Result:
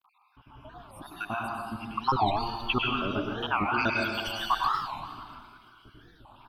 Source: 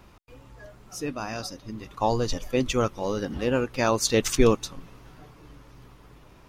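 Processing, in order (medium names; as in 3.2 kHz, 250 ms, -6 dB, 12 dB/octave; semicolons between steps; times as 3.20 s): random holes in the spectrogram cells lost 80%; peaking EQ 100 Hz +5 dB 0.64 oct; frequency-shifting echo 343 ms, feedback 49%, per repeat +110 Hz, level -17.5 dB; plate-style reverb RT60 1.4 s, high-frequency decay 0.85×, pre-delay 90 ms, DRR -2 dB; level rider gain up to 10 dB; crackle 19 per s -50 dBFS; tone controls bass -13 dB, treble -13 dB; static phaser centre 1.9 kHz, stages 6; warped record 45 rpm, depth 250 cents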